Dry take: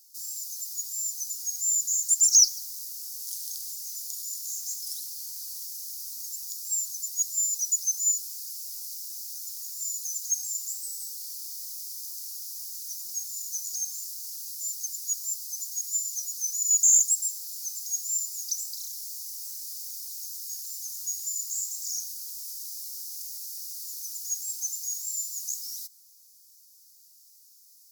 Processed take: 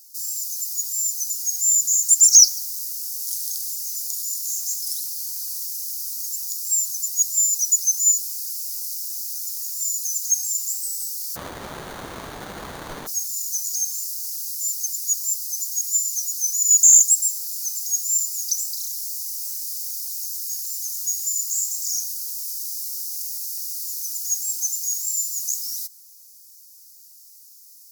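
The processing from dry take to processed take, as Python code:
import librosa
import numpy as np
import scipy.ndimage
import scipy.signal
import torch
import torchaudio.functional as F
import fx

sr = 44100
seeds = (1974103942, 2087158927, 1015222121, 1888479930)

y = fx.high_shelf(x, sr, hz=3200.0, db=10.5)
y = fx.running_max(y, sr, window=17, at=(11.35, 13.06), fade=0.02)
y = F.gain(torch.from_numpy(y), -1.5).numpy()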